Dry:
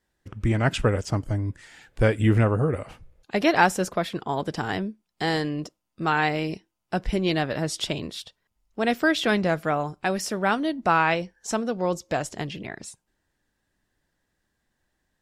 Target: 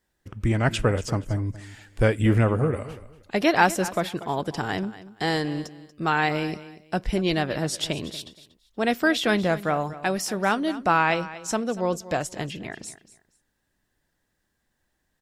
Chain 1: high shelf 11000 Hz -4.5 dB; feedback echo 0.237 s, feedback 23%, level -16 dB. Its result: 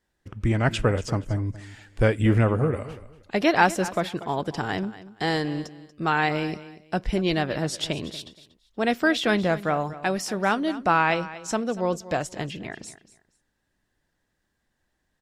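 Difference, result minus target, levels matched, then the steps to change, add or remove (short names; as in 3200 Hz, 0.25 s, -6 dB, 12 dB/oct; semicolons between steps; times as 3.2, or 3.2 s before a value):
8000 Hz band -2.5 dB
change: high shelf 11000 Hz +6.5 dB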